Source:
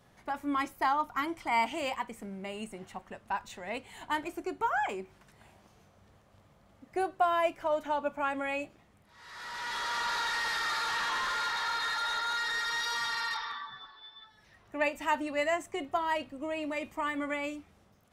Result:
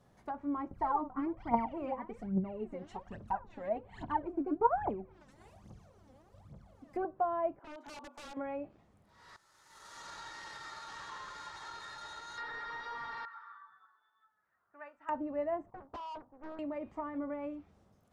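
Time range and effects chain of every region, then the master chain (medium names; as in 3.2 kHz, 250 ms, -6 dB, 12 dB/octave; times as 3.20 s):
0.71–7.05 s: peaking EQ 150 Hz +4.5 dB 2.8 oct + phaser 1.2 Hz, delay 4 ms, feedback 78%
7.59–8.37 s: compression 20:1, threshold -32 dBFS + rippled Chebyshev high-pass 240 Hz, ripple 9 dB + integer overflow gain 36.5 dB
9.36–12.38 s: power-law waveshaper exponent 3 + upward compressor, threshold -47 dBFS + comb of notches 240 Hz
13.25–15.09 s: band-pass filter 1.4 kHz, Q 5 + tilt EQ -2.5 dB/octave
15.70–16.59 s: four-pole ladder low-pass 1 kHz, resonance 75% + hard clipper -37 dBFS + loudspeaker Doppler distortion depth 0.98 ms
whole clip: peaking EQ 2.5 kHz -8 dB 1.9 oct; low-pass that closes with the level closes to 1 kHz, closed at -32 dBFS; treble shelf 7.1 kHz -6.5 dB; trim -2 dB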